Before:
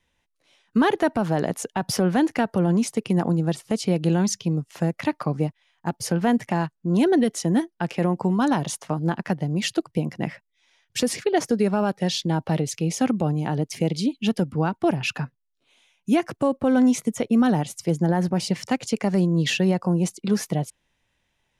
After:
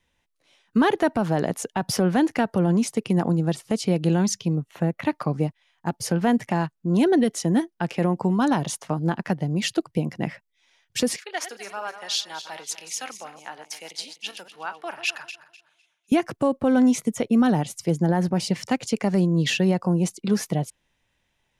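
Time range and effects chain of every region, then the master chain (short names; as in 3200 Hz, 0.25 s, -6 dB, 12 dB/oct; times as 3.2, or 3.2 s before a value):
4.55–5.07 bell 7700 Hz -9.5 dB 1.5 oct + notch 5000 Hz, Q 5.2
11.16–16.12 regenerating reverse delay 0.126 s, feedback 58%, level -10 dB + HPF 1200 Hz + three-band expander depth 40%
whole clip: dry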